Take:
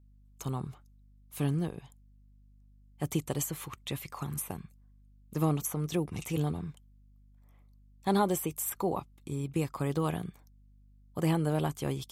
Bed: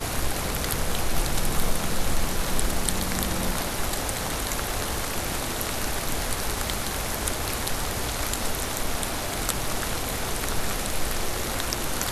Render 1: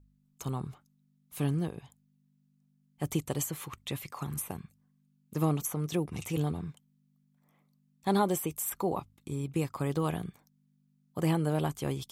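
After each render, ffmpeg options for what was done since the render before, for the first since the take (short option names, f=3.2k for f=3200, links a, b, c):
-af "bandreject=f=50:t=h:w=4,bandreject=f=100:t=h:w=4"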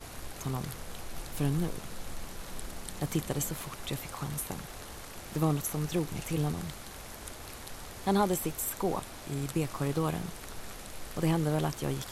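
-filter_complex "[1:a]volume=-16dB[a];[0:a][a]amix=inputs=2:normalize=0"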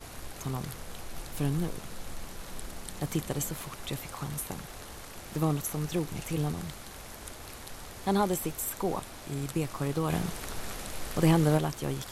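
-filter_complex "[0:a]asettb=1/sr,asplit=3[a][b][c];[a]atrim=end=10.104[d];[b]atrim=start=10.1:end=11.58,asetpts=PTS-STARTPTS,afade=t=in:d=0.004:c=qsin,afade=t=out:st=1.476:d=0.004:c=qsin,acontrast=30[e];[c]atrim=start=11.576[f];[d][e]acrossfade=d=0.004:c1=hsin:c2=qsin[g];[g][f]acrossfade=d=0.004:c1=qsin:c2=hsin"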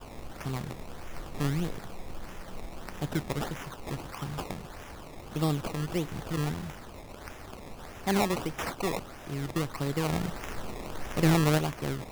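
-af "acrusher=samples=20:mix=1:aa=0.000001:lfo=1:lforange=20:lforate=1.6"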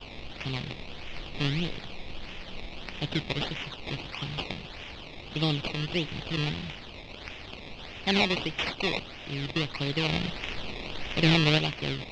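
-af "lowpass=f=4.1k:w=0.5412,lowpass=f=4.1k:w=1.3066,highshelf=f=2k:t=q:w=1.5:g=11"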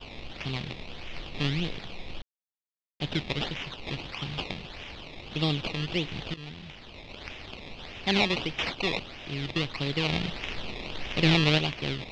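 -filter_complex "[0:a]asplit=4[a][b][c][d];[a]atrim=end=2.22,asetpts=PTS-STARTPTS,afade=t=out:st=2.216:d=0.004:c=hsin[e];[b]atrim=start=2.22:end=3,asetpts=PTS-STARTPTS,volume=0[f];[c]atrim=start=3:end=6.34,asetpts=PTS-STARTPTS,afade=t=in:d=0.004:c=hsin,afade=t=out:st=3.336:d=0.004:c=hsin:silence=0.133352[g];[d]atrim=start=6.34,asetpts=PTS-STARTPTS,afade=t=in:d=0.82:silence=0.133352[h];[e][f][g][h]concat=n=4:v=0:a=1"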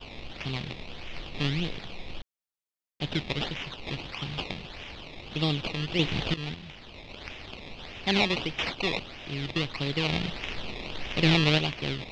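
-filter_complex "[0:a]asettb=1/sr,asplit=3[a][b][c];[a]atrim=end=5.994[d];[b]atrim=start=5.99:end=6.55,asetpts=PTS-STARTPTS,afade=t=in:d=0.004:c=qsin,afade=t=out:st=0.556:d=0.004:c=qsin,acontrast=66[e];[c]atrim=start=6.546[f];[d][e]acrossfade=d=0.004:c1=hsin:c2=qsin[g];[g][f]acrossfade=d=0.004:c1=qsin:c2=hsin"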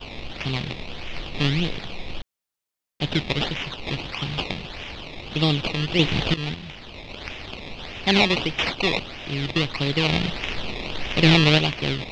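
-af "volume=6.5dB,alimiter=limit=-3dB:level=0:latency=1"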